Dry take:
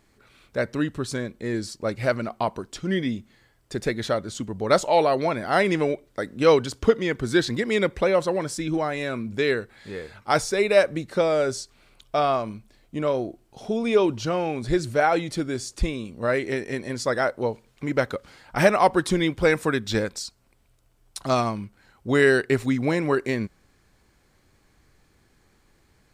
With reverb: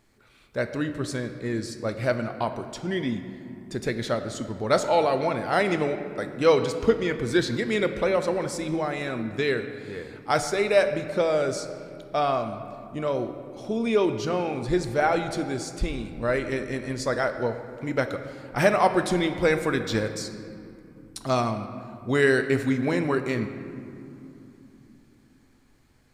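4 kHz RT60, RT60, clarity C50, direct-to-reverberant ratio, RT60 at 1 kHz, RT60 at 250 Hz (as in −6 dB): 1.4 s, 2.9 s, 9.5 dB, 7.5 dB, 2.8 s, 4.4 s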